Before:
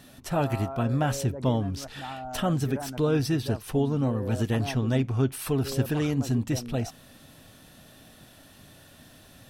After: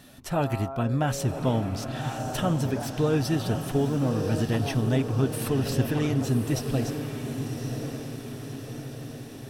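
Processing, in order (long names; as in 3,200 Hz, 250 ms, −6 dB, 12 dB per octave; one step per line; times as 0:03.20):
feedback delay with all-pass diffusion 1,112 ms, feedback 57%, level −7 dB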